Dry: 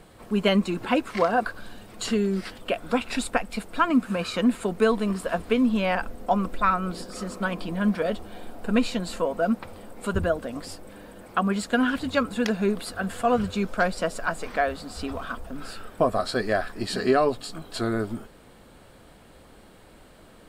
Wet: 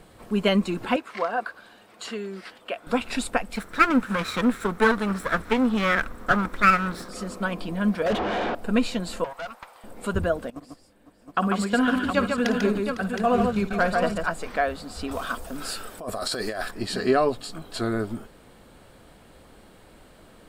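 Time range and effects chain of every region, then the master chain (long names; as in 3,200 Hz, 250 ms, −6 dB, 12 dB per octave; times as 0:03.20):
0:00.96–0:02.87: high-pass filter 810 Hz 6 dB per octave + high-shelf EQ 3,900 Hz −9.5 dB
0:03.55–0:07.09: lower of the sound and its delayed copy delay 0.52 ms + parametric band 1,300 Hz +9.5 dB 0.98 octaves
0:08.06–0:08.55: low-pass filter 3,900 Hz 24 dB per octave + mid-hump overdrive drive 35 dB, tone 1,600 Hz, clips at −16.5 dBFS
0:09.24–0:09.84: high-pass with resonance 960 Hz, resonance Q 1.7 + tube saturation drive 30 dB, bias 0.6
0:10.50–0:14.28: noise gate −33 dBFS, range −17 dB + multi-tap delay 54/144/504/716 ms −13/−4.5/−14.5/−7 dB
0:15.11–0:16.71: bass and treble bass −5 dB, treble +9 dB + compressor whose output falls as the input rises −29 dBFS
whole clip: no processing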